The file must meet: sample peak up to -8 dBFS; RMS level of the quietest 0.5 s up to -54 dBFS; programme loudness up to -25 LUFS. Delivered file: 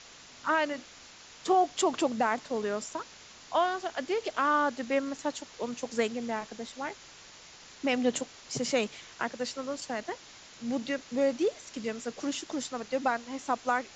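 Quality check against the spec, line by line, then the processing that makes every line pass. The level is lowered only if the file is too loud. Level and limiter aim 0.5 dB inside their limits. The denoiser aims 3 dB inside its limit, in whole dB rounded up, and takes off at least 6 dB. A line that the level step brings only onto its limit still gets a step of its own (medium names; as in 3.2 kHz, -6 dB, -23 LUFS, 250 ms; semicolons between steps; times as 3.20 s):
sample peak -15.0 dBFS: pass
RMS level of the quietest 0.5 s -52 dBFS: fail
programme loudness -31.5 LUFS: pass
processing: noise reduction 6 dB, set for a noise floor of -52 dBFS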